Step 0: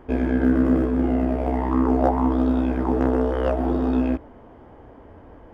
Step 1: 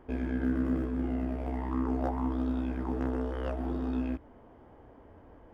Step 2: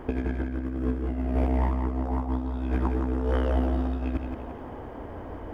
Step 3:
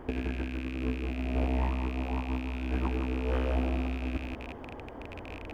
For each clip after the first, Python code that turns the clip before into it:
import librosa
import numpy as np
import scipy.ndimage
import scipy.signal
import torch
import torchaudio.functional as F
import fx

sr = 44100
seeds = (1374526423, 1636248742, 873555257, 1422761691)

y1 = fx.dynamic_eq(x, sr, hz=570.0, q=0.72, threshold_db=-33.0, ratio=4.0, max_db=-6)
y1 = y1 * librosa.db_to_amplitude(-8.5)
y2 = fx.over_compress(y1, sr, threshold_db=-36.0, ratio=-0.5)
y2 = fx.echo_feedback(y2, sr, ms=171, feedback_pct=47, wet_db=-6)
y2 = y2 * librosa.db_to_amplitude(8.5)
y3 = fx.rattle_buzz(y2, sr, strikes_db=-37.0, level_db=-26.0)
y3 = y3 * librosa.db_to_amplitude(-4.5)